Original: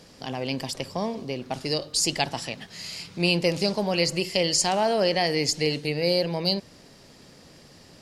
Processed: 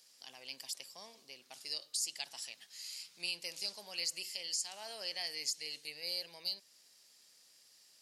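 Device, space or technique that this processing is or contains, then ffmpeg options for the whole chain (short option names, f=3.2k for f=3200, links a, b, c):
clipper into limiter: -af "aderivative,asoftclip=type=hard:threshold=-10.5dB,alimiter=limit=-18.5dB:level=0:latency=1:release=299,volume=-5.5dB"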